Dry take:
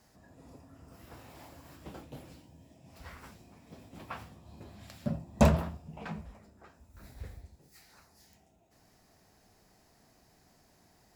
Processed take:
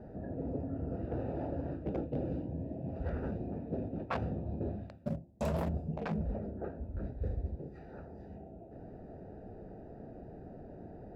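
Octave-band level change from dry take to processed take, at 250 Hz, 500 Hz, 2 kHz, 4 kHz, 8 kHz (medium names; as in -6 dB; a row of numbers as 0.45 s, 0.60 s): 0.0 dB, +1.0 dB, -4.0 dB, -9.0 dB, under -10 dB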